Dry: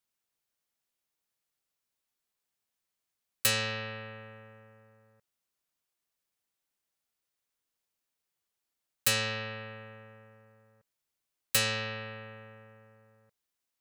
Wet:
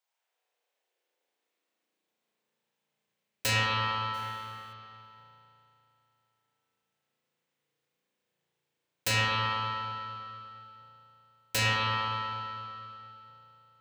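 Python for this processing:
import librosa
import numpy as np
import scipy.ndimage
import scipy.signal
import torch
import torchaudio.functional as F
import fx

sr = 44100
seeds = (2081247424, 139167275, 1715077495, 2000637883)

y = np.minimum(x, 2.0 * 10.0 ** (-25.5 / 20.0) - x)
y = fx.graphic_eq_31(y, sr, hz=(500, 1250, 10000, 16000), db=(6, -5, -6, -10))
y = fx.sample_hold(y, sr, seeds[0], rate_hz=4000.0, jitter_pct=0, at=(4.13, 4.72), fade=0.02)
y = fx.filter_sweep_highpass(y, sr, from_hz=770.0, to_hz=130.0, start_s=0.06, end_s=3.03, q=2.0)
y = fx.rev_spring(y, sr, rt60_s=2.8, pass_ms=(35,), chirp_ms=50, drr_db=-7.0)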